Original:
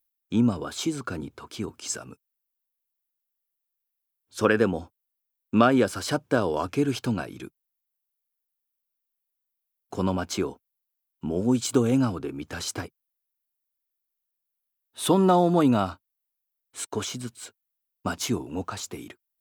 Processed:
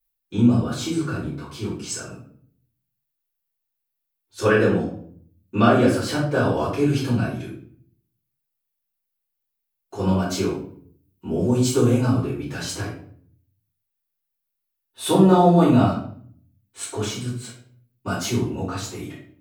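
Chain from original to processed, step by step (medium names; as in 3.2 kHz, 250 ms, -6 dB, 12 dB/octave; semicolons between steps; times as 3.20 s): 10.02–12.53 s: treble shelf 9 kHz +5.5 dB; simulated room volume 71 m³, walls mixed, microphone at 3.2 m; trim -9.5 dB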